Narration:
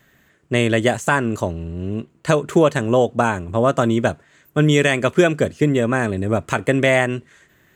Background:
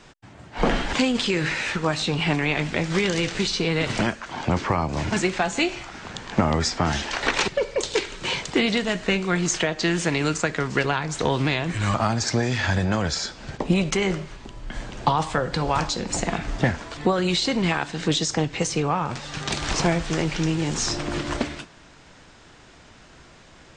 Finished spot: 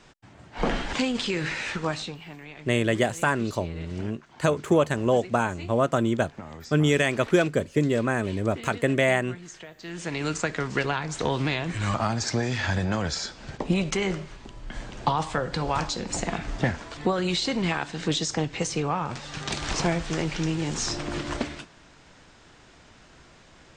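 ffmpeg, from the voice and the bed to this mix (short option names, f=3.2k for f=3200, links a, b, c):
-filter_complex "[0:a]adelay=2150,volume=-6dB[a];[1:a]volume=12dB,afade=t=out:st=1.91:d=0.28:silence=0.16788,afade=t=in:st=9.82:d=0.55:silence=0.149624[b];[a][b]amix=inputs=2:normalize=0"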